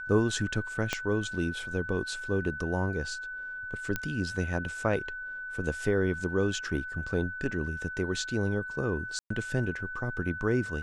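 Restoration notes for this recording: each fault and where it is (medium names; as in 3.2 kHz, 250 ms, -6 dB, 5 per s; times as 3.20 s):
whine 1.5 kHz -36 dBFS
0.93 s: pop -13 dBFS
3.96 s: pop -15 dBFS
9.19–9.30 s: dropout 114 ms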